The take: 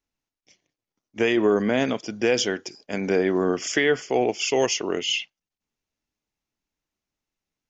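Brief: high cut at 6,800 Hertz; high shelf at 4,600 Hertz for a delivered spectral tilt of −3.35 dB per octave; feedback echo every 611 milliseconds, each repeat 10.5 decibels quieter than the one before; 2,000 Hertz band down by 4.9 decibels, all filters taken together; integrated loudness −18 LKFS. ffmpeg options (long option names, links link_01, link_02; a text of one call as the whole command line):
ffmpeg -i in.wav -af "lowpass=6800,equalizer=frequency=2000:width_type=o:gain=-8,highshelf=frequency=4600:gain=8.5,aecho=1:1:611|1222|1833:0.299|0.0896|0.0269,volume=5.5dB" out.wav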